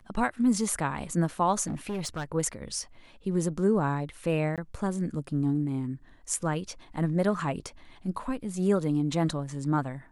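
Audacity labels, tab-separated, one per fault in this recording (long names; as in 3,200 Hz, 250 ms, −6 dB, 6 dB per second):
1.670000	2.250000	clipping −28.5 dBFS
4.560000	4.580000	drop-out 17 ms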